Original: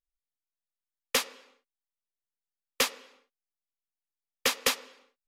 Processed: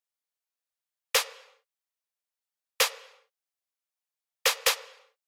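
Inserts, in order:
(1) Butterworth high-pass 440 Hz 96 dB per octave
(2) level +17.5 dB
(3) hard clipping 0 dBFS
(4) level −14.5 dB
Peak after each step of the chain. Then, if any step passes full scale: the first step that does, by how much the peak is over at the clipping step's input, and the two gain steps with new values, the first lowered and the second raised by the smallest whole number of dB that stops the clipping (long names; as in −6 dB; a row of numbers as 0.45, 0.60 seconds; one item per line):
−10.0, +7.5, 0.0, −14.5 dBFS
step 2, 7.5 dB
step 2 +9.5 dB, step 4 −6.5 dB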